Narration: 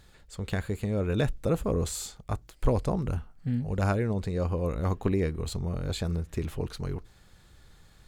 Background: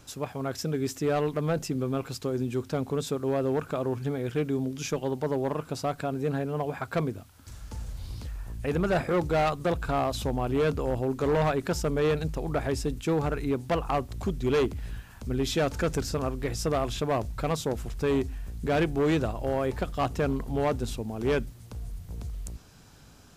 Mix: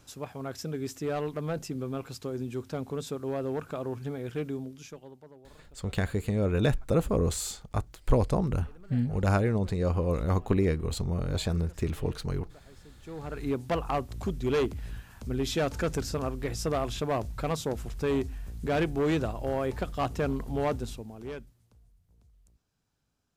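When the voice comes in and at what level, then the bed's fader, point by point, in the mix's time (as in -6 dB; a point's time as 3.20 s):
5.45 s, +1.5 dB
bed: 4.49 s -5 dB
5.45 s -27 dB
12.83 s -27 dB
13.47 s -2 dB
20.74 s -2 dB
21.95 s -25.5 dB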